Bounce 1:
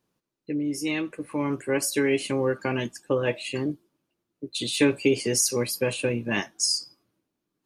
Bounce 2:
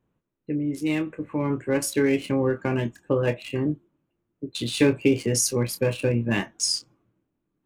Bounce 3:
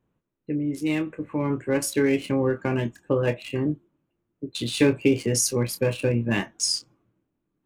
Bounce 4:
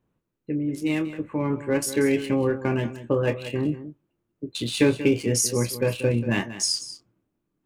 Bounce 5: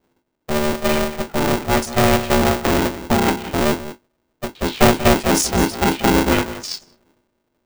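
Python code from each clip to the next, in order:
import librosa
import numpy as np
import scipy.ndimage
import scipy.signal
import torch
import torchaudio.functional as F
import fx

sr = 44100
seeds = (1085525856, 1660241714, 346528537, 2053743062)

y1 = fx.wiener(x, sr, points=9)
y1 = fx.low_shelf(y1, sr, hz=140.0, db=11.5)
y1 = fx.doubler(y1, sr, ms=26.0, db=-10)
y2 = y1
y3 = y2 + 10.0 ** (-13.5 / 20.0) * np.pad(y2, (int(186 * sr / 1000.0), 0))[:len(y2)]
y4 = fx.octave_divider(y3, sr, octaves=2, level_db=3.0)
y4 = fx.env_lowpass(y4, sr, base_hz=650.0, full_db=-15.5)
y4 = y4 * np.sign(np.sin(2.0 * np.pi * 300.0 * np.arange(len(y4)) / sr))
y4 = F.gain(torch.from_numpy(y4), 4.0).numpy()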